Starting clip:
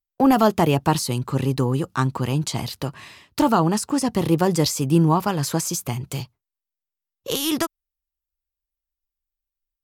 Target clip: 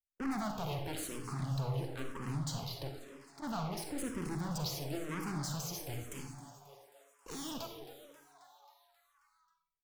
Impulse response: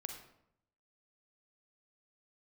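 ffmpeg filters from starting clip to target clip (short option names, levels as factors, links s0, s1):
-filter_complex "[0:a]asplit=3[s0][s1][s2];[s0]afade=t=out:st=2.89:d=0.02[s3];[s1]acompressor=threshold=0.00282:ratio=2.5,afade=t=in:st=2.89:d=0.02,afade=t=out:st=3.42:d=0.02[s4];[s2]afade=t=in:st=3.42:d=0.02[s5];[s3][s4][s5]amix=inputs=3:normalize=0,aeval=exprs='(tanh(22.4*val(0)+0.65)-tanh(0.65))/22.4':c=same,asplit=8[s6][s7][s8][s9][s10][s11][s12][s13];[s7]adelay=268,afreqshift=140,volume=0.178[s14];[s8]adelay=536,afreqshift=280,volume=0.114[s15];[s9]adelay=804,afreqshift=420,volume=0.0724[s16];[s10]adelay=1072,afreqshift=560,volume=0.0468[s17];[s11]adelay=1340,afreqshift=700,volume=0.0299[s18];[s12]adelay=1608,afreqshift=840,volume=0.0191[s19];[s13]adelay=1876,afreqshift=980,volume=0.0122[s20];[s6][s14][s15][s16][s17][s18][s19][s20]amix=inputs=8:normalize=0[s21];[1:a]atrim=start_sample=2205[s22];[s21][s22]afir=irnorm=-1:irlink=0,asplit=2[s23][s24];[s24]afreqshift=-1[s25];[s23][s25]amix=inputs=2:normalize=1,volume=0.668"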